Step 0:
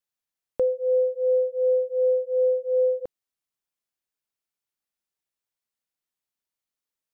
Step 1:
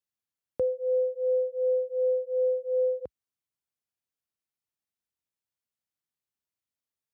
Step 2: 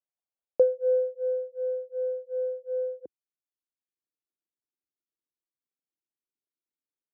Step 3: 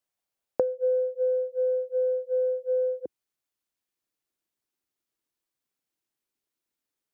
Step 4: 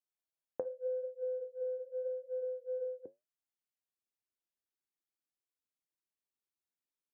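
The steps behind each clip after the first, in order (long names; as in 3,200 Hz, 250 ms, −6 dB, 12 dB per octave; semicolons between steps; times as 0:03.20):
high-pass filter 61 Hz 24 dB per octave; low-shelf EQ 180 Hz +10.5 dB; level −5.5 dB
band-pass filter sweep 670 Hz → 330 Hz, 0:00.25–0:01.50; transient designer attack +8 dB, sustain −5 dB; level +1.5 dB
downward compressor 6 to 1, threshold −31 dBFS, peak gain reduction 14.5 dB; level +8 dB
flanger 0.83 Hz, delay 4.9 ms, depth 6.2 ms, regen −71%; level −8 dB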